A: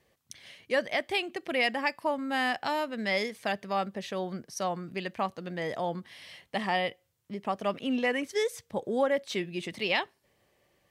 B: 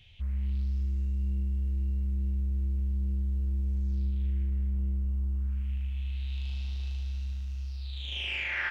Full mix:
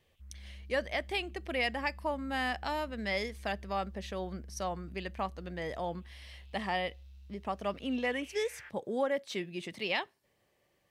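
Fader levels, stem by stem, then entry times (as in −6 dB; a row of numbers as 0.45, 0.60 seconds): −4.5, −19.0 decibels; 0.00, 0.00 seconds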